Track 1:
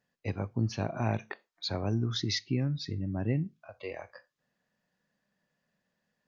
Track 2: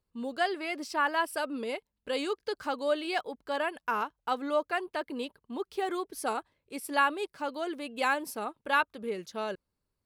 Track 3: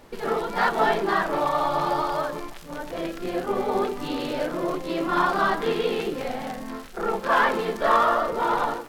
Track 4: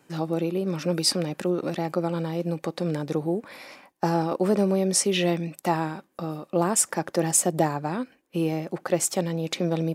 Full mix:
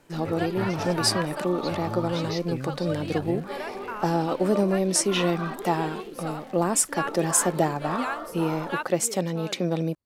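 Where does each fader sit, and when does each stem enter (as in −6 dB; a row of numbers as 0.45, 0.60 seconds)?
−4.5, −5.0, −12.5, −0.5 decibels; 0.00, 0.00, 0.00, 0.00 seconds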